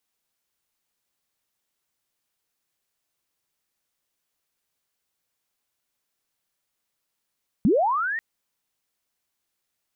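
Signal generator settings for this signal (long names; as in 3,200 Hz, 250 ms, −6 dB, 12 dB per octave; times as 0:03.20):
glide linear 170 Hz → 1,900 Hz −14.5 dBFS → −25.5 dBFS 0.54 s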